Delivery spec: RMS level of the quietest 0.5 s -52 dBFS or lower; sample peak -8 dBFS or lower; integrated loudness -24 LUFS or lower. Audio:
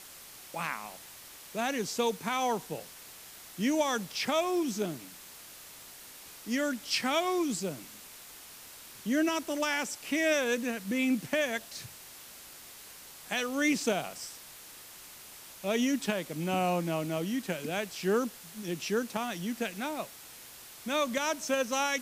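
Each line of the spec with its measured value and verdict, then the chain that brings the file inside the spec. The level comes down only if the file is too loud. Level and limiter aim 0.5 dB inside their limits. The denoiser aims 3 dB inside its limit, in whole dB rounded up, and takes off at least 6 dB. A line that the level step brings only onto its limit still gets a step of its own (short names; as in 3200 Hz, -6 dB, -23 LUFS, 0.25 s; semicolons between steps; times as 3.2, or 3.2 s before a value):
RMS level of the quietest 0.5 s -50 dBFS: fail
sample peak -15.0 dBFS: OK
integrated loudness -31.5 LUFS: OK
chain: denoiser 6 dB, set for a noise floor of -50 dBFS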